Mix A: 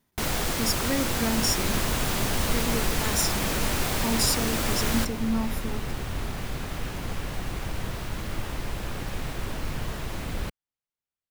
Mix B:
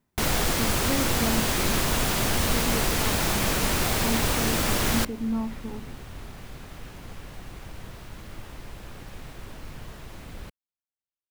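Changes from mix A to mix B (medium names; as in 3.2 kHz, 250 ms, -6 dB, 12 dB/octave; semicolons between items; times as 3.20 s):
speech: add distance through air 480 m; first sound +3.0 dB; second sound -9.0 dB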